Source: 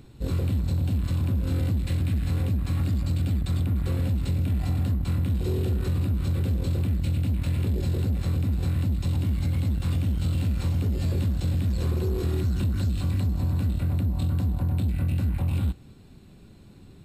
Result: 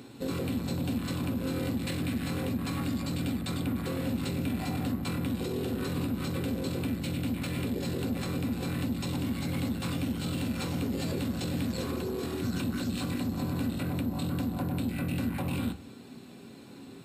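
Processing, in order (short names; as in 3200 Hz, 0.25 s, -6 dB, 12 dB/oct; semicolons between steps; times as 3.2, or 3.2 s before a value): HPF 230 Hz 12 dB/oct; limiter -31 dBFS, peak gain reduction 9.5 dB; on a send: reverb RT60 0.20 s, pre-delay 4 ms, DRR 7 dB; on the sum: gain +6 dB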